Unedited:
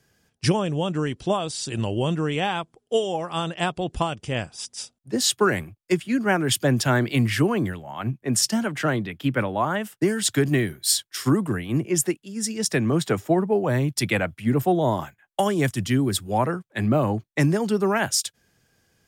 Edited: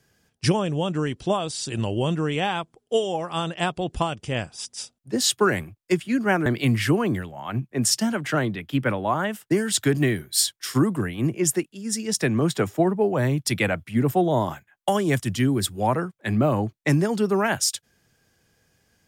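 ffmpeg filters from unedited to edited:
-filter_complex "[0:a]asplit=2[a][b];[a]atrim=end=6.462[c];[b]atrim=start=6.968[d];[c][d]acrossfade=d=0.004:c1=hsin:c2=hsin"

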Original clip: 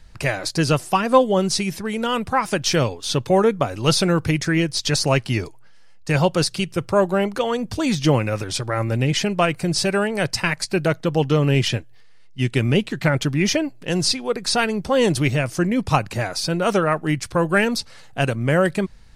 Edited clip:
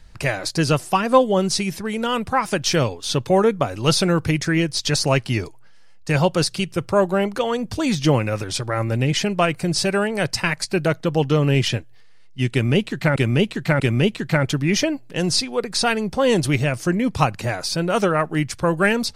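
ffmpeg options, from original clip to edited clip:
-filter_complex "[0:a]asplit=3[a][b][c];[a]atrim=end=13.162[d];[b]atrim=start=12.518:end=13.162[e];[c]atrim=start=12.518[f];[d][e]acrossfade=d=0.004:c1=hsin:c2=hsin[g];[g][f]acrossfade=d=0.004:c1=hsin:c2=hsin"

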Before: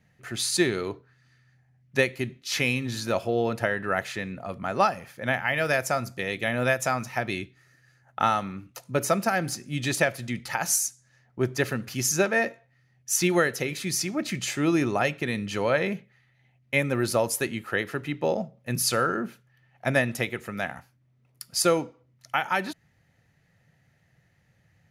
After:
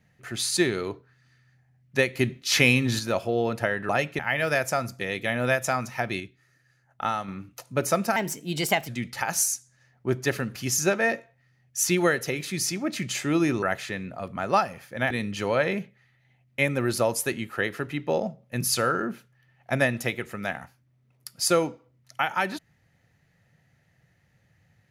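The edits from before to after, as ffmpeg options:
-filter_complex "[0:a]asplit=11[a][b][c][d][e][f][g][h][i][j][k];[a]atrim=end=2.152[l];[b]atrim=start=2.148:end=2.992,asetpts=PTS-STARTPTS,volume=6dB[m];[c]atrim=start=2.988:end=3.892[n];[d]atrim=start=14.948:end=15.252[o];[e]atrim=start=5.368:end=7.382[p];[f]atrim=start=7.378:end=8.462,asetpts=PTS-STARTPTS,volume=-4.5dB[q];[g]atrim=start=8.458:end=9.344[r];[h]atrim=start=9.34:end=10.21,asetpts=PTS-STARTPTS,asetrate=52920,aresample=44100,atrim=end_sample=31972,asetpts=PTS-STARTPTS[s];[i]atrim=start=10.206:end=14.952[t];[j]atrim=start=3.888:end=5.372[u];[k]atrim=start=15.248[v];[l][m]acrossfade=d=0.004:c1=hsin:c2=hsin[w];[w][n]acrossfade=d=0.004:c1=hsin:c2=hsin[x];[x][o]acrossfade=d=0.004:c1=hsin:c2=hsin[y];[y][p]acrossfade=d=0.004:c1=hsin:c2=hsin[z];[z][q]acrossfade=d=0.004:c1=hsin:c2=hsin[aa];[aa][r]acrossfade=d=0.004:c1=hsin:c2=hsin[ab];[ab][s]acrossfade=d=0.004:c1=hsin:c2=hsin[ac];[ac][t]acrossfade=d=0.004:c1=hsin:c2=hsin[ad];[ad][u]acrossfade=d=0.004:c1=hsin:c2=hsin[ae];[ae][v]acrossfade=d=0.004:c1=hsin:c2=hsin"

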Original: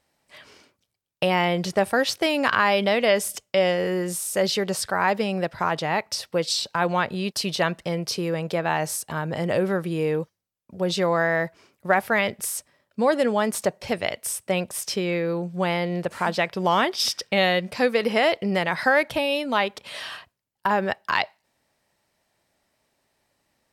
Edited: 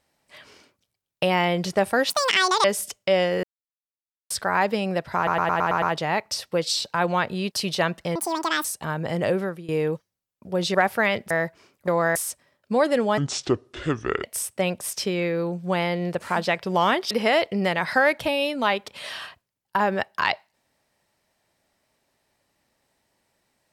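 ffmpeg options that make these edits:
-filter_complex "[0:a]asplit=21[a][b][c][d][e][f][g][h][i][j][k][l][m][n][o][p][q][r][s][t][u];[a]atrim=end=2.104[v];[b]atrim=start=2.1:end=3.11,asetpts=PTS-STARTPTS,asetrate=82026,aresample=44100[w];[c]atrim=start=3.106:end=3.9,asetpts=PTS-STARTPTS,afade=t=out:st=0.79:d=0.004:c=hsin[x];[d]atrim=start=3.9:end=4.77,asetpts=PTS-STARTPTS,volume=0[y];[e]atrim=start=4.77:end=5.742,asetpts=PTS-STARTPTS,afade=t=in:d=0.004:c=hsin[z];[f]atrim=start=5.628:end=5.742[aa];[g]atrim=start=5.628:end=5.742[ab];[h]atrim=start=5.628:end=5.742[ac];[i]atrim=start=5.628:end=5.742[ad];[j]atrim=start=5.628:end=5.742[ae];[k]atrim=start=5.628:end=7.964[af];[l]atrim=start=7.96:end=8.92,asetpts=PTS-STARTPTS,asetrate=85995,aresample=44100[ag];[m]atrim=start=8.916:end=9.96,asetpts=PTS-STARTPTS,afade=t=out:st=0.664:d=0.38:silence=0.133352[ah];[n]atrim=start=9.96:end=11.022,asetpts=PTS-STARTPTS,afade=t=in:d=0.004:c=hsin:silence=0.133352[ai];[o]atrim=start=11.868:end=12.432[aj];[p]atrim=start=11.298:end=11.872[ak];[q]atrim=start=11.018:end=11.302[al];[r]atrim=start=12.428:end=13.454[am];[s]atrim=start=13.45:end=14.14,asetpts=PTS-STARTPTS,asetrate=28665,aresample=44100[an];[t]atrim=start=14.136:end=17.012[ao];[u]atrim=start=18.008[ap];[v][w]acrossfade=d=0.004:c1=hsin:c2=hsin[aq];[x][y][z]concat=n=3:v=0:a=1[ar];[aq][ar]acrossfade=d=0.004:c1=hsin:c2=hsin[as];[as][aa]acrossfade=d=0.004:c1=hsin:c2=hsin[at];[at][ab]acrossfade=d=0.004:c1=hsin:c2=hsin[au];[au][ac]acrossfade=d=0.004:c1=hsin:c2=hsin[av];[av][ad]acrossfade=d=0.004:c1=hsin:c2=hsin[aw];[aw][ae]acrossfade=d=0.004:c1=hsin:c2=hsin[ax];[ax][af]acrossfade=d=0.004:c1=hsin:c2=hsin[ay];[ay][ag]acrossfade=d=0.004:c1=hsin:c2=hsin[az];[ah][ai]concat=n=2:v=0:a=1[ba];[az][ba]acrossfade=d=0.004:c1=hsin:c2=hsin[bb];[bb][aj]acrossfade=d=0.004:c1=hsin:c2=hsin[bc];[bc][ak]acrossfade=d=0.004:c1=hsin:c2=hsin[bd];[bd][al]acrossfade=d=0.004:c1=hsin:c2=hsin[be];[be][am]acrossfade=d=0.004:c1=hsin:c2=hsin[bf];[bf][an]acrossfade=d=0.004:c1=hsin:c2=hsin[bg];[bg][ao]acrossfade=d=0.004:c1=hsin:c2=hsin[bh];[bh][ap]acrossfade=d=0.004:c1=hsin:c2=hsin"

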